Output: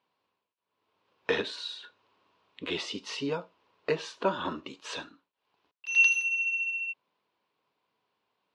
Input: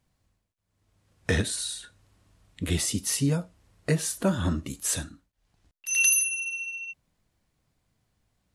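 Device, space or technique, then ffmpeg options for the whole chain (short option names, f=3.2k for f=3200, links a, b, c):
phone earpiece: -af "highpass=410,equalizer=f=420:t=q:w=4:g=6,equalizer=f=680:t=q:w=4:g=-3,equalizer=f=990:t=q:w=4:g=9,equalizer=f=1.9k:t=q:w=4:g=-5,equalizer=f=2.7k:t=q:w=4:g=4,lowpass=f=4.2k:w=0.5412,lowpass=f=4.2k:w=1.3066"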